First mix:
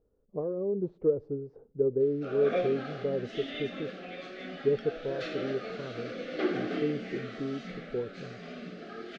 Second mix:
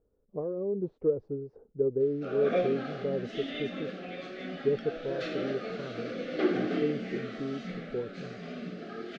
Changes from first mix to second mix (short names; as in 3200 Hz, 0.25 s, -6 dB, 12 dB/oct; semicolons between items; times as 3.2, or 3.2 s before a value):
background: add low shelf 380 Hz +5 dB; reverb: off